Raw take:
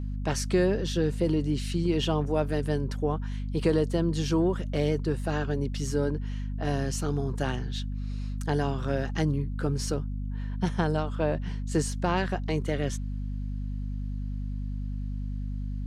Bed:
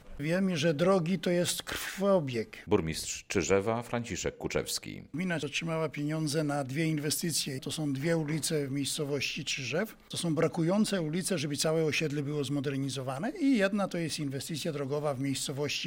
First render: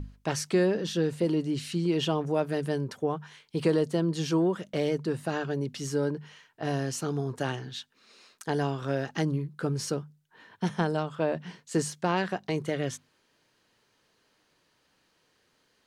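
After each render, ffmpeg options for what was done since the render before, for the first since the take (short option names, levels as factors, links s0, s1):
-af "bandreject=f=50:t=h:w=6,bandreject=f=100:t=h:w=6,bandreject=f=150:t=h:w=6,bandreject=f=200:t=h:w=6,bandreject=f=250:t=h:w=6"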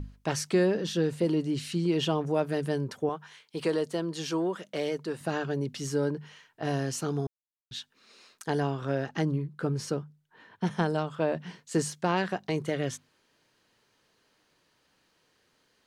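-filter_complex "[0:a]asettb=1/sr,asplit=3[s0][s1][s2];[s0]atrim=end=3.094[s3];[s1]atrim=start=3.09:end=5.21,asetpts=PTS-STARTPTS,afade=t=in:d=0.004:c=qsin,afade=t=out:st=2.116:d=0.004:c=qsin,highpass=f=420:p=1[s4];[s2]atrim=start=5.206[s5];[s3][s4]acrossfade=d=0.004:c1=hsin:c2=qsin[s6];[s6][s5]acrossfade=d=0.004:c1=qsin:c2=hsin,asettb=1/sr,asplit=3[s7][s8][s9];[s7]atrim=end=8.604[s10];[s8]atrim=start=8.6:end=10.71,asetpts=PTS-STARTPTS,afade=t=in:d=0.004:c=qsin,afade=t=out:st=2.106:d=0.004:c=qsin,highshelf=f=3900:g=-6.5[s11];[s9]atrim=start=10.706[s12];[s10][s11]acrossfade=d=0.004:c1=hsin:c2=qsin[s13];[s13][s12]acrossfade=d=0.004:c1=qsin:c2=hsin,asplit=3[s14][s15][s16];[s14]atrim=end=7.27,asetpts=PTS-STARTPTS,afade=t=out:st=7.266:d=0.004:c=hsin[s17];[s15]atrim=start=7.27:end=7.71,asetpts=PTS-STARTPTS,volume=0[s18];[s16]atrim=start=7.71,asetpts=PTS-STARTPTS,afade=t=in:d=0.004:c=hsin[s19];[s17][s18][s19]concat=n=3:v=0:a=1"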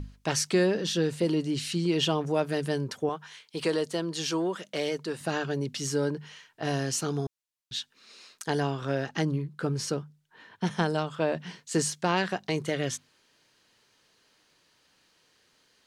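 -af "equalizer=f=5500:w=0.36:g=6"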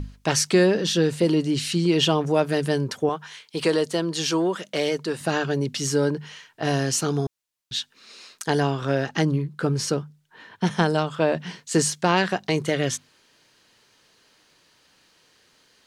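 -af "volume=2"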